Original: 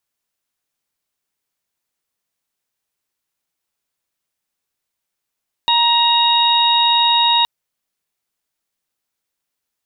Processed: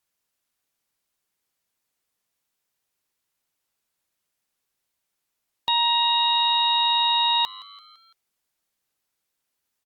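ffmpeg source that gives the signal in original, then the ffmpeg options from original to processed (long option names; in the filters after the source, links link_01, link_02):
-f lavfi -i "aevalsrc='0.178*sin(2*PI*942*t)+0.0316*sin(2*PI*1884*t)+0.0891*sin(2*PI*2826*t)+0.2*sin(2*PI*3768*t)':duration=1.77:sample_rate=44100"
-filter_complex "[0:a]alimiter=limit=-15dB:level=0:latency=1,asplit=5[link_01][link_02][link_03][link_04][link_05];[link_02]adelay=169,afreqshift=100,volume=-21dB[link_06];[link_03]adelay=338,afreqshift=200,volume=-26dB[link_07];[link_04]adelay=507,afreqshift=300,volume=-31.1dB[link_08];[link_05]adelay=676,afreqshift=400,volume=-36.1dB[link_09];[link_01][link_06][link_07][link_08][link_09]amix=inputs=5:normalize=0" -ar 48000 -c:a libopus -b:a 64k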